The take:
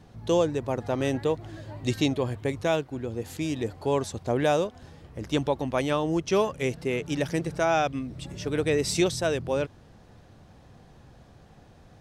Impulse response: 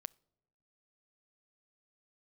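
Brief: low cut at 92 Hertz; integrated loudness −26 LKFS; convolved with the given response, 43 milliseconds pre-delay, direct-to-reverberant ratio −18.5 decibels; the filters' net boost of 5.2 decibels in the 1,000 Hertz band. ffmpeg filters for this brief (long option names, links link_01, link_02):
-filter_complex "[0:a]highpass=92,equalizer=frequency=1000:width_type=o:gain=7,asplit=2[link_01][link_02];[1:a]atrim=start_sample=2205,adelay=43[link_03];[link_02][link_03]afir=irnorm=-1:irlink=0,volume=23dB[link_04];[link_01][link_04]amix=inputs=2:normalize=0,volume=-18.5dB"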